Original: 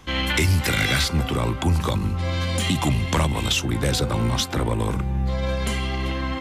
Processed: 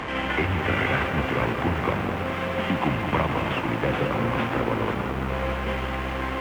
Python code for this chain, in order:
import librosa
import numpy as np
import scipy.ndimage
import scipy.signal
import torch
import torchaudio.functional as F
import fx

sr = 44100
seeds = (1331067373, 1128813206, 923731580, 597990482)

p1 = fx.delta_mod(x, sr, bps=16000, step_db=-20.5)
p2 = fx.highpass(p1, sr, hz=260.0, slope=6)
p3 = p2 + fx.echo_split(p2, sr, split_hz=1100.0, low_ms=211, high_ms=491, feedback_pct=52, wet_db=-7.5, dry=0)
p4 = np.sign(p3) * np.maximum(np.abs(p3) - 10.0 ** (-37.0 / 20.0), 0.0)
p5 = fx.lowpass(p4, sr, hz=1700.0, slope=6)
p6 = fx.echo_crushed(p5, sr, ms=168, feedback_pct=80, bits=8, wet_db=-12.5)
y = p6 * librosa.db_to_amplitude(2.5)